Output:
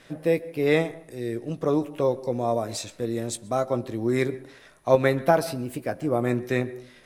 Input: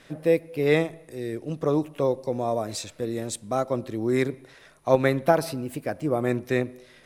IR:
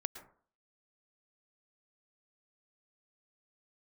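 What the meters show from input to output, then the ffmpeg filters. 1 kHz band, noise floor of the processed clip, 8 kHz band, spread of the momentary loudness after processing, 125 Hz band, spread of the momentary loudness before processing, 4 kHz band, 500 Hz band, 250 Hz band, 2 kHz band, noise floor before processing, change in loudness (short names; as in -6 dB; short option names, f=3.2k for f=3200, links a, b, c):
+0.5 dB, -52 dBFS, +0.5 dB, 11 LU, +0.5 dB, 10 LU, +0.5 dB, 0.0 dB, 0.0 dB, +0.5 dB, -54 dBFS, +0.5 dB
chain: -filter_complex "[0:a]asplit=2[a][b];[1:a]atrim=start_sample=2205,adelay=17[c];[b][c]afir=irnorm=-1:irlink=0,volume=-9.5dB[d];[a][d]amix=inputs=2:normalize=0"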